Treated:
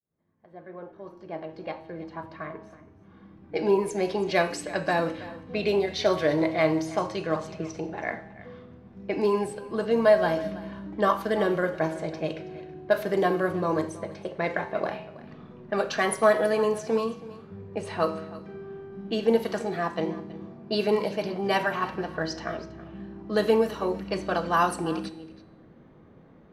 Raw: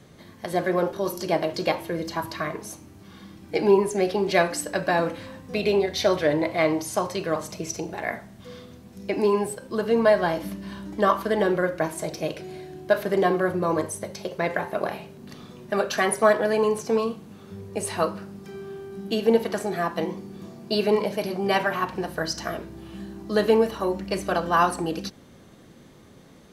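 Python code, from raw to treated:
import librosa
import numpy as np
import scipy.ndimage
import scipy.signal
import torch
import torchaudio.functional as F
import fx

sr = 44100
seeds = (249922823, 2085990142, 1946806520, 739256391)

y = fx.fade_in_head(x, sr, length_s=4.65)
y = fx.env_lowpass(y, sr, base_hz=1400.0, full_db=-17.5)
y = fx.comb_fb(y, sr, f0_hz=160.0, decay_s=0.9, harmonics='all', damping=0.0, mix_pct=60)
y = y + 10.0 ** (-18.0 / 20.0) * np.pad(y, (int(325 * sr / 1000.0), 0))[:len(y)]
y = F.gain(torch.from_numpy(y), 5.0).numpy()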